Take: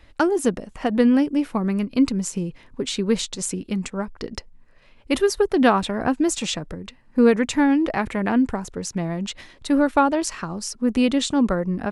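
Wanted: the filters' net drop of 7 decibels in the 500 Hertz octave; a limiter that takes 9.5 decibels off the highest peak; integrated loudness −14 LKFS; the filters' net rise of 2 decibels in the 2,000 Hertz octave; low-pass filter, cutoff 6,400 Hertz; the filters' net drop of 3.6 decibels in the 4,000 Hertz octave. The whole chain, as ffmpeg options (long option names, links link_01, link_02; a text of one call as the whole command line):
ffmpeg -i in.wav -af "lowpass=6400,equalizer=frequency=500:width_type=o:gain=-9,equalizer=frequency=2000:width_type=o:gain=4.5,equalizer=frequency=4000:width_type=o:gain=-5.5,volume=13dB,alimiter=limit=-3dB:level=0:latency=1" out.wav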